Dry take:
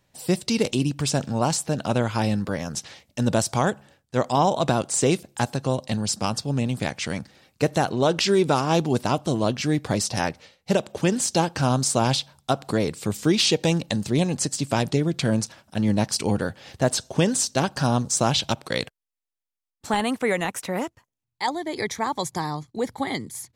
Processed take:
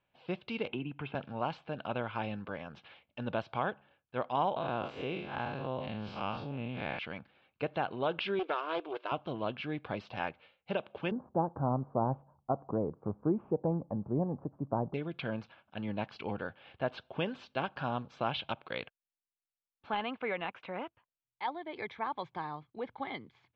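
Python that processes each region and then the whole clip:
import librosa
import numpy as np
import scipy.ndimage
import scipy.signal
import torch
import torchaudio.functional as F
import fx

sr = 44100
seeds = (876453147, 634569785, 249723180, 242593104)

y = fx.chain(x, sr, fx.lowpass(hz=2900.0, slope=24),
    fx.notch_comb(f0_hz=570.0),
    fx.band_squash(depth_pct=70), at=(0.68, 1.15))
y = fx.chain(y, sr, fx.spec_blur(span_ms=115.0),
    fx.env_flatten(amount_pct=70), at=(4.56, 6.99))
y = fx.chain(y, sr, fx.brickwall_highpass(low_hz=290.0),
    fx.notch(hz=820.0, q=5.3),
    fx.doppler_dist(depth_ms=0.26), at=(8.39, 9.12))
y = fx.chain(y, sr, fx.steep_lowpass(hz=1100.0, slope=36),
    fx.low_shelf(hz=480.0, db=7.0), at=(11.11, 14.94))
y = scipy.signal.sosfilt(scipy.signal.butter(6, 3100.0, 'lowpass', fs=sr, output='sos'), y)
y = fx.low_shelf(y, sr, hz=490.0, db=-11.5)
y = fx.notch(y, sr, hz=1900.0, q=5.8)
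y = y * 10.0 ** (-6.5 / 20.0)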